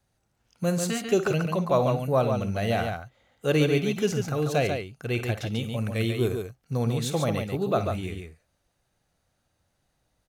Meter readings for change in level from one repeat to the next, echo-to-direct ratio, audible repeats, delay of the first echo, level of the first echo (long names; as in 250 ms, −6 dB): repeats not evenly spaced, −4.5 dB, 2, 53 ms, −13.5 dB